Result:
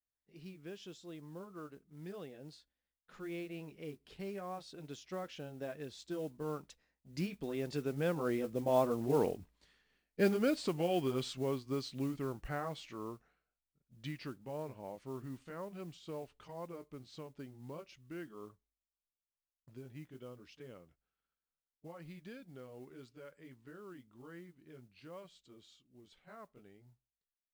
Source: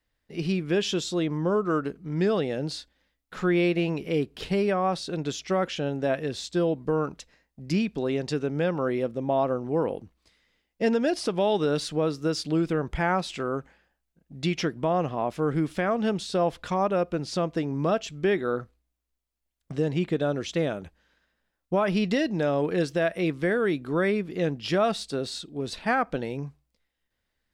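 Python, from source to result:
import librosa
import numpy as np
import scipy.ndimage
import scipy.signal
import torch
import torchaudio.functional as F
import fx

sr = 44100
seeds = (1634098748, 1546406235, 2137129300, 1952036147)

y = fx.pitch_heads(x, sr, semitones=-1.5)
y = fx.doppler_pass(y, sr, speed_mps=24, closest_m=24.0, pass_at_s=9.39)
y = fx.mod_noise(y, sr, seeds[0], snr_db=24)
y = F.gain(torch.from_numpy(y), -3.0).numpy()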